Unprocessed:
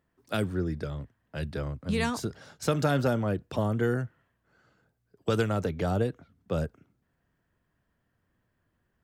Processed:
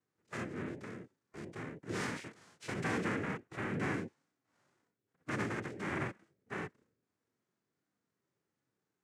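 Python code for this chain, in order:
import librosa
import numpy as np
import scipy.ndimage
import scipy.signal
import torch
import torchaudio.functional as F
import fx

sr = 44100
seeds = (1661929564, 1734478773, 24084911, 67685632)

y = fx.noise_vocoder(x, sr, seeds[0], bands=3)
y = fx.dynamic_eq(y, sr, hz=2100.0, q=1.2, threshold_db=-46.0, ratio=4.0, max_db=6)
y = fx.hpss(y, sr, part='percussive', gain_db=-14)
y = y * librosa.db_to_amplitude(-5.5)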